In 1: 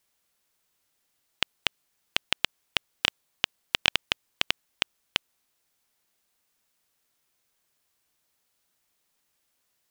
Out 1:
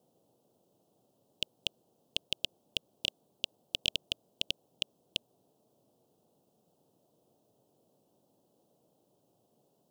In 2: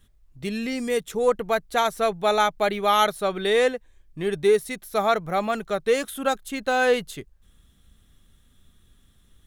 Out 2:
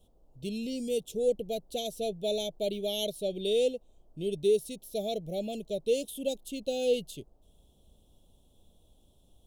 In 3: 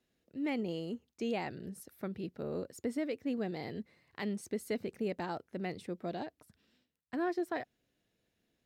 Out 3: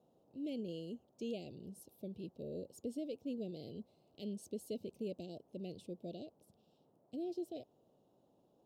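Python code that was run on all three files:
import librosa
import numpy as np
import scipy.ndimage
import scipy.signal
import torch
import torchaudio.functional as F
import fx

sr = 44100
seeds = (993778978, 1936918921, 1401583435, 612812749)

y = scipy.signal.sosfilt(scipy.signal.ellip(3, 1.0, 40, [600.0, 2900.0], 'bandstop', fs=sr, output='sos'), x)
y = fx.dmg_noise_band(y, sr, seeds[0], low_hz=110.0, high_hz=710.0, level_db=-67.0)
y = F.gain(torch.from_numpy(y), -5.5).numpy()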